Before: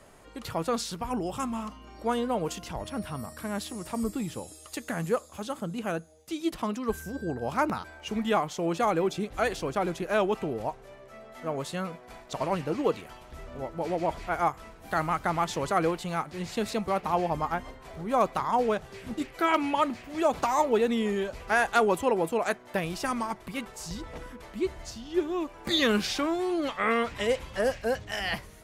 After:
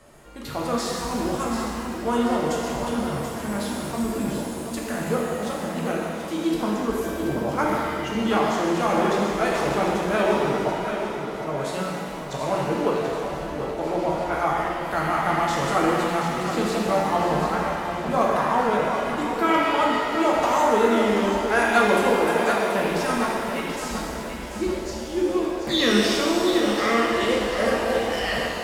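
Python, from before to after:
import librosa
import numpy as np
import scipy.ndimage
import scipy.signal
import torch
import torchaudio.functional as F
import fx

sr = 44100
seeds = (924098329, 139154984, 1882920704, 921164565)

y = fx.echo_feedback(x, sr, ms=733, feedback_pct=43, wet_db=-8)
y = fx.rev_shimmer(y, sr, seeds[0], rt60_s=1.9, semitones=7, shimmer_db=-8, drr_db=-3.0)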